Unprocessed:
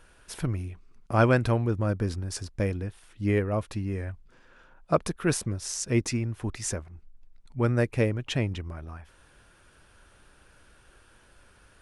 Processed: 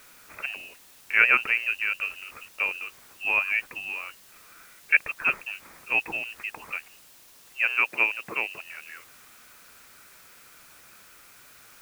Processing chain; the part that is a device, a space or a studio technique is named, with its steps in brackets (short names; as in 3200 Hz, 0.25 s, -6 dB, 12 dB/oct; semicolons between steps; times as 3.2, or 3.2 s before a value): scrambled radio voice (BPF 320–3000 Hz; inverted band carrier 2900 Hz; white noise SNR 23 dB); 7.68–8.63 HPF 180 Hz 12 dB/oct; gain +4 dB